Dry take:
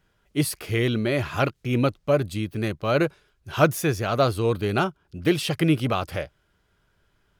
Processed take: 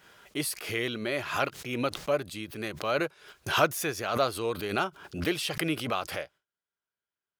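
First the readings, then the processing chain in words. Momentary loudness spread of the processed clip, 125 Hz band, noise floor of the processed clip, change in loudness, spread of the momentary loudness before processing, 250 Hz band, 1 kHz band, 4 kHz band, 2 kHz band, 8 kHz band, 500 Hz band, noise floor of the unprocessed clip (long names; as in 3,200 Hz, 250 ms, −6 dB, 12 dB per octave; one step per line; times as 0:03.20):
10 LU, −14.0 dB, below −85 dBFS, −6.0 dB, 7 LU, −9.5 dB, −3.5 dB, −1.5 dB, −2.0 dB, −1.5 dB, −6.5 dB, −68 dBFS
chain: noise gate with hold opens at −47 dBFS
high-pass filter 610 Hz 6 dB per octave
background raised ahead of every attack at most 86 dB per second
level −3 dB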